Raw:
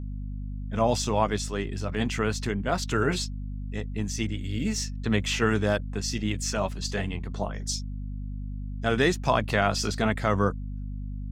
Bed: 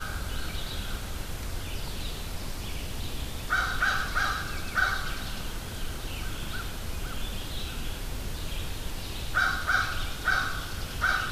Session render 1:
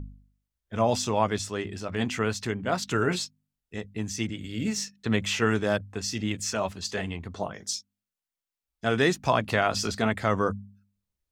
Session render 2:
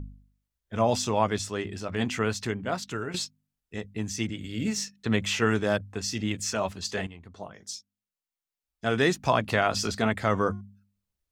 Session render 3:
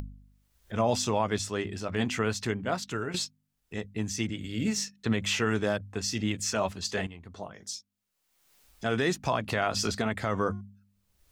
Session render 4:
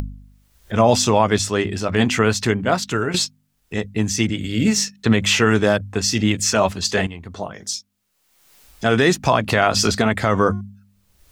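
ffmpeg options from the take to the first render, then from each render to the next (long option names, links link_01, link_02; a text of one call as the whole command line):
ffmpeg -i in.wav -af "bandreject=frequency=50:width_type=h:width=4,bandreject=frequency=100:width_type=h:width=4,bandreject=frequency=150:width_type=h:width=4,bandreject=frequency=200:width_type=h:width=4,bandreject=frequency=250:width_type=h:width=4" out.wav
ffmpeg -i in.wav -filter_complex "[0:a]asettb=1/sr,asplit=3[link_01][link_02][link_03];[link_01]atrim=end=10.214[link_04];[link_02]atrim=start=10.21:end=10.61,asetpts=PTS-STARTPTS,afade=type=in:duration=0.004:curve=qsin,afade=type=out:start_time=0.396:duration=0.004:curve=qsin,bandreject=frequency=357.5:width_type=h:width=4,bandreject=frequency=715:width_type=h:width=4,bandreject=frequency=1072.5:width_type=h:width=4,bandreject=frequency=1430:width_type=h:width=4,bandreject=frequency=1787.5:width_type=h:width=4,bandreject=frequency=2145:width_type=h:width=4,bandreject=frequency=2502.5:width_type=h:width=4,bandreject=frequency=2860:width_type=h:width=4,bandreject=frequency=3217.5:width_type=h:width=4,bandreject=frequency=3575:width_type=h:width=4,bandreject=frequency=3932.5:width_type=h:width=4,bandreject=frequency=4290:width_type=h:width=4,bandreject=frequency=4647.5:width_type=h:width=4,bandreject=frequency=5005:width_type=h:width=4,bandreject=frequency=5362.5:width_type=h:width=4,bandreject=frequency=5720:width_type=h:width=4,bandreject=frequency=6077.5:width_type=h:width=4,bandreject=frequency=6435:width_type=h:width=4,bandreject=frequency=6792.5:width_type=h:width=4,bandreject=frequency=7150:width_type=h:width=4,bandreject=frequency=7507.5:width_type=h:width=4,bandreject=frequency=7865:width_type=h:width=4,bandreject=frequency=8222.5:width_type=h:width=4,bandreject=frequency=8580:width_type=h:width=4,bandreject=frequency=8937.5:width_type=h:width=4,bandreject=frequency=9295:width_type=h:width=4,bandreject=frequency=9652.5:width_type=h:width=4,bandreject=frequency=10010:width_type=h:width=4,bandreject=frequency=10367.5:width_type=h:width=4,bandreject=frequency=10725:width_type=h:width=4,bandreject=frequency=11082.5:width_type=h:width=4[link_05];[link_03]atrim=start=10.606[link_06];[link_04][link_05]acrossfade=duration=0.004:curve1=hsin:curve2=qsin[link_07];[link_07][link_06]acrossfade=duration=0.004:curve1=qsin:curve2=hsin,asplit=3[link_08][link_09][link_10];[link_08]atrim=end=3.14,asetpts=PTS-STARTPTS,afade=type=out:start_time=2.47:duration=0.67:silence=0.251189[link_11];[link_09]atrim=start=3.14:end=7.07,asetpts=PTS-STARTPTS,afade=type=in:duration=0.004:curve=hsin:silence=0.251189,afade=type=out:start_time=3.926:duration=0.004:curve=hsin:silence=0.251189[link_12];[link_10]atrim=start=7.07,asetpts=PTS-STARTPTS,afade=type=in:duration=2.13:silence=0.251189[link_13];[link_11][link_12][link_13]concat=n=3:v=0:a=1" out.wav
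ffmpeg -i in.wav -af "acompressor=mode=upward:threshold=-39dB:ratio=2.5,alimiter=limit=-15.5dB:level=0:latency=1:release=106" out.wav
ffmpeg -i in.wav -af "volume=11.5dB" out.wav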